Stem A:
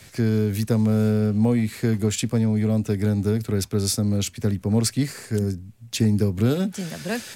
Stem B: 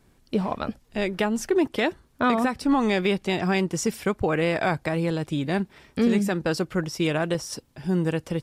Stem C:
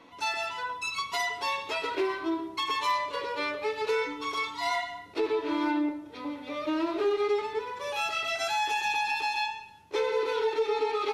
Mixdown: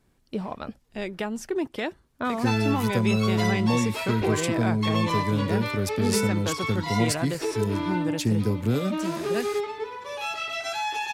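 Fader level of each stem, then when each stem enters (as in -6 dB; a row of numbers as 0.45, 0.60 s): -4.0, -6.0, -0.5 dB; 2.25, 0.00, 2.25 s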